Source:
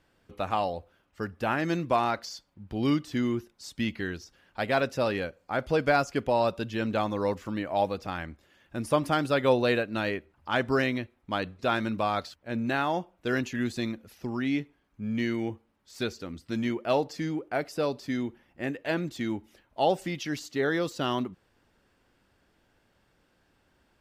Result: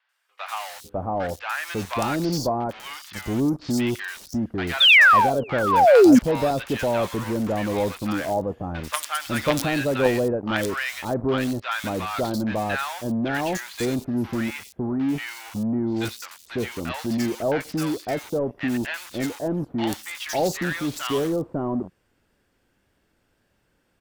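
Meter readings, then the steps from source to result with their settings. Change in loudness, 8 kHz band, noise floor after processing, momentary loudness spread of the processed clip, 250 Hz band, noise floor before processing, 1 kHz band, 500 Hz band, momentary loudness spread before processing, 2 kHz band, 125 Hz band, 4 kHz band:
+7.0 dB, +12.0 dB, −69 dBFS, 13 LU, +6.5 dB, −69 dBFS, +6.0 dB, +5.5 dB, 12 LU, +10.0 dB, +5.0 dB, +12.0 dB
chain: high-shelf EQ 6,700 Hz +5 dB
in parallel at −4 dB: log-companded quantiser 2 bits
on the sum: sound drawn into the spectrogram fall, 0:04.80–0:05.64, 230–3,700 Hz −11 dBFS
three-band delay without the direct sound mids, highs, lows 90/550 ms, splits 940/4,100 Hz
tape wow and flutter 29 cents

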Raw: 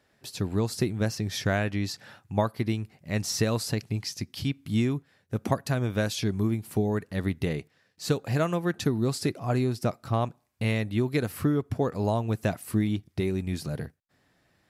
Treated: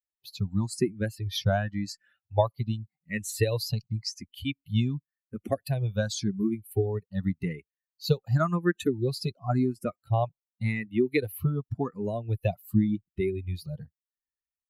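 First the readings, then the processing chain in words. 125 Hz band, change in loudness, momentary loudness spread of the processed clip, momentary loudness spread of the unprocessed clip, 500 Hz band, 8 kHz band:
−0.5 dB, −1.0 dB, 9 LU, 7 LU, −0.5 dB, −3.5 dB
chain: spectral dynamics exaggerated over time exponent 2
frequency shifter mixed with the dry sound +0.9 Hz
level +7 dB

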